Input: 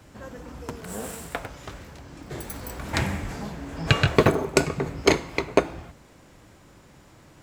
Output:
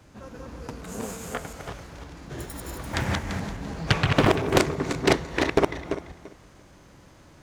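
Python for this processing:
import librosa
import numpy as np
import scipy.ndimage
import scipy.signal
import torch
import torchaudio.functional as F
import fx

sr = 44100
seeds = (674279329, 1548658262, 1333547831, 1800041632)

y = fx.reverse_delay_fb(x, sr, ms=170, feedback_pct=41, wet_db=-1.0)
y = fx.formant_shift(y, sr, semitones=-2)
y = fx.doppler_dist(y, sr, depth_ms=0.84)
y = y * librosa.db_to_amplitude(-2.5)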